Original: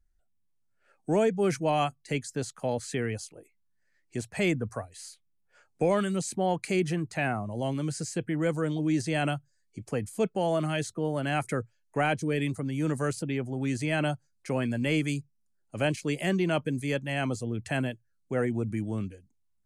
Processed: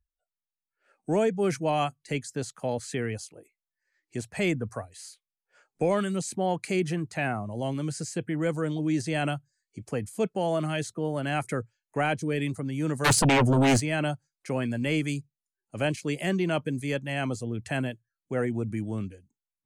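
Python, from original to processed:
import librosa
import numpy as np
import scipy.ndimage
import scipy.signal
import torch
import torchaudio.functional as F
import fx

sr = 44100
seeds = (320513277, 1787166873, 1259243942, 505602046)

y = fx.noise_reduce_blind(x, sr, reduce_db=23)
y = fx.fold_sine(y, sr, drive_db=fx.line((13.04, 15.0), (13.79, 11.0)), ceiling_db=-16.5, at=(13.04, 13.79), fade=0.02)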